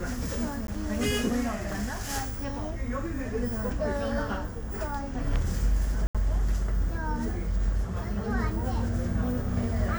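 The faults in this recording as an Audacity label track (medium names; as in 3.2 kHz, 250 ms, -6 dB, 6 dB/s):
0.670000	0.680000	dropout 12 ms
6.070000	6.150000	dropout 76 ms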